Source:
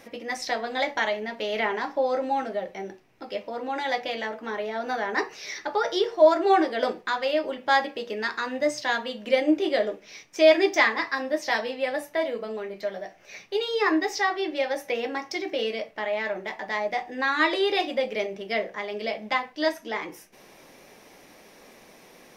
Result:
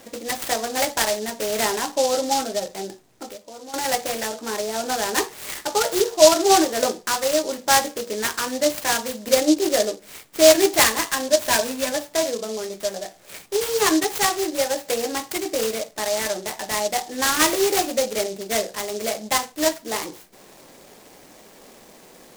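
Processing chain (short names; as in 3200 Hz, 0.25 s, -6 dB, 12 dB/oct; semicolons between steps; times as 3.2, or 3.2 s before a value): 3.29–3.74 compressor 5:1, threshold -42 dBFS, peak gain reduction 14.5 dB; 11.28–11.92 ripple EQ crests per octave 1.5, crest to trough 13 dB; noise-modulated delay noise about 5200 Hz, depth 0.094 ms; gain +4 dB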